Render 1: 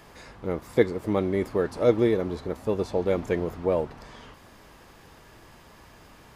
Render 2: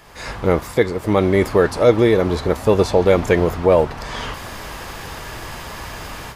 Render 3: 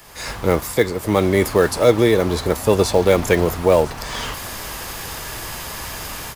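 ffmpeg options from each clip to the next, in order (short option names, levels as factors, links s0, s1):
-filter_complex "[0:a]equalizer=f=260:w=0.66:g=-6,asplit=2[s0][s1];[s1]alimiter=limit=0.0891:level=0:latency=1,volume=1[s2];[s0][s2]amix=inputs=2:normalize=0,dynaudnorm=f=150:g=3:m=6.31,volume=0.891"
-filter_complex "[0:a]crystalizer=i=2:c=0,acrossover=split=240|680|4200[s0][s1][s2][s3];[s2]acrusher=bits=3:mode=log:mix=0:aa=0.000001[s4];[s3]aecho=1:1:1004:0.178[s5];[s0][s1][s4][s5]amix=inputs=4:normalize=0,volume=0.891"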